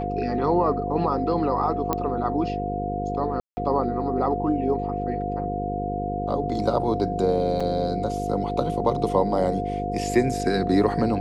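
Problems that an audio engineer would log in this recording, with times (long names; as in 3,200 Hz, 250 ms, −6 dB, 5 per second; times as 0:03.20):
mains buzz 50 Hz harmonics 10 −30 dBFS
whistle 710 Hz −28 dBFS
0:01.93: click −9 dBFS
0:03.40–0:03.57: drop-out 170 ms
0:07.60–0:07.61: drop-out 5.3 ms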